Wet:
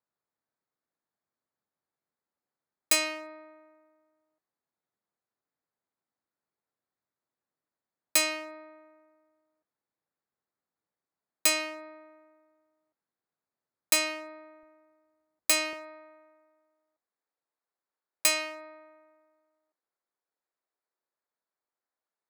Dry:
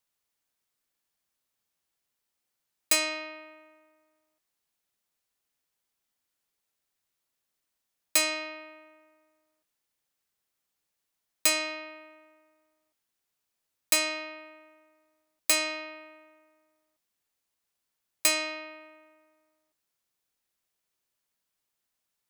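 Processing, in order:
adaptive Wiener filter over 15 samples
high-pass filter 110 Hz, from 0:14.63 49 Hz, from 0:15.73 360 Hz

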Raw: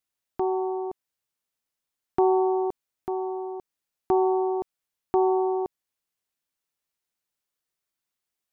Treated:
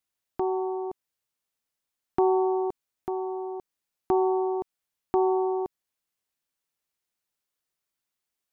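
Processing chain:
dynamic equaliser 570 Hz, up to −4 dB, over −35 dBFS, Q 1.6

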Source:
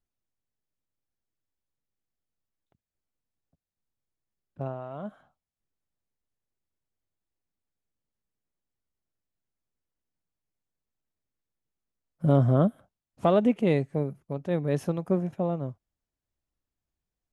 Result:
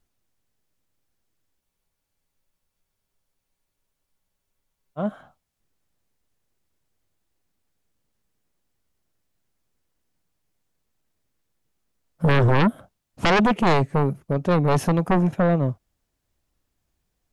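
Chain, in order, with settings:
sine wavefolder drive 13 dB, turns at −9.5 dBFS
frozen spectrum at 0:01.63, 3.36 s
level −4.5 dB

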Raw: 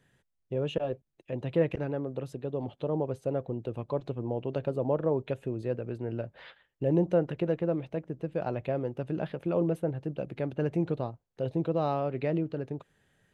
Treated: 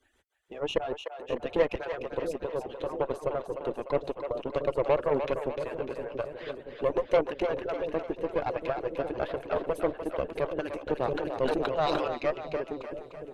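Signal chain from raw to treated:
harmonic-percussive split with one part muted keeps percussive
parametric band 170 Hz −11 dB 1.1 octaves
harmonic generator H 6 −19 dB, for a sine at −17.5 dBFS
echo with a time of its own for lows and highs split 510 Hz, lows 682 ms, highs 299 ms, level −7 dB
0:10.98–0:12.08: level that may fall only so fast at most 21 dB per second
level +5 dB

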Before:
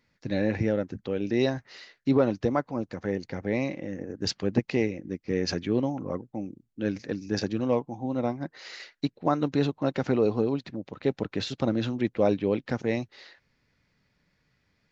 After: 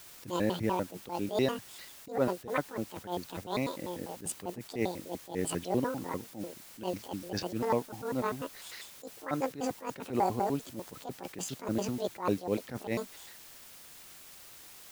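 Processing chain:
pitch shifter gated in a rhythm +10 semitones, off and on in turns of 99 ms
bit-depth reduction 8 bits, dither triangular
level that may rise only so fast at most 170 dB per second
level −3.5 dB

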